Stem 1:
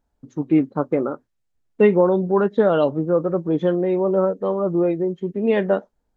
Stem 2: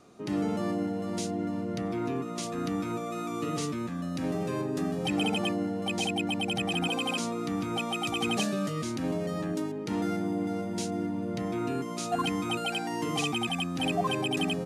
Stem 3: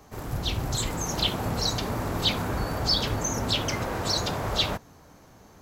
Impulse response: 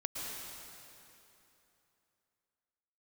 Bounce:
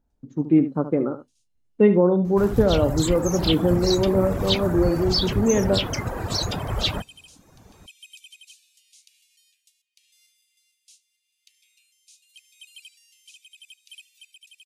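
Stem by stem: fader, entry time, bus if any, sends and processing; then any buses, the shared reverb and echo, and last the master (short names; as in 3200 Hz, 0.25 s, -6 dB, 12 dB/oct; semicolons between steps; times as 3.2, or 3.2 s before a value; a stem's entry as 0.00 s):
-6.5 dB, 0.00 s, no send, echo send -11.5 dB, bell 240 Hz +4.5 dB 2.2 oct
-12.0 dB, 0.10 s, no send, echo send -21 dB, steep high-pass 2500 Hz 48 dB/oct; high shelf 7400 Hz +8.5 dB; rotary speaker horn 0.85 Hz; auto duck -24 dB, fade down 0.20 s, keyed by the first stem
+1.0 dB, 2.25 s, no send, no echo send, reverb removal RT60 1 s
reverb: off
echo: echo 73 ms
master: low shelf 210 Hz +7 dB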